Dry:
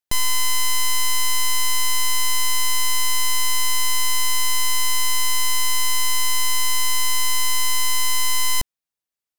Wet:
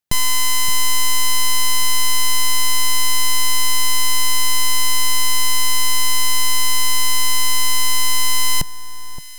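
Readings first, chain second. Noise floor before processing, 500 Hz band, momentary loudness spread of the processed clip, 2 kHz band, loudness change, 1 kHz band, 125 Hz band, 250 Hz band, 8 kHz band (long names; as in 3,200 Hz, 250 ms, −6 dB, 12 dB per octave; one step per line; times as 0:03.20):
below −85 dBFS, +4.5 dB, 0 LU, +2.5 dB, +3.0 dB, +3.0 dB, can't be measured, +7.5 dB, +3.0 dB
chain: parametric band 150 Hz +9.5 dB 1 octave
on a send: delay that swaps between a low-pass and a high-pass 570 ms, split 1,400 Hz, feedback 51%, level −12.5 dB
on the sum: level +3 dB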